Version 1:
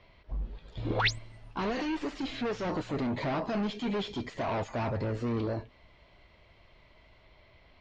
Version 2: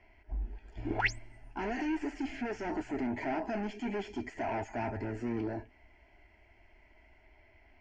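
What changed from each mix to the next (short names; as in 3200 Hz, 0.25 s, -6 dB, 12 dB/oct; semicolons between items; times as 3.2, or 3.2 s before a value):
master: add fixed phaser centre 770 Hz, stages 8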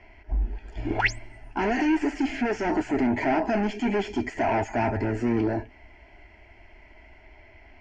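speech +10.5 dB; background +6.5 dB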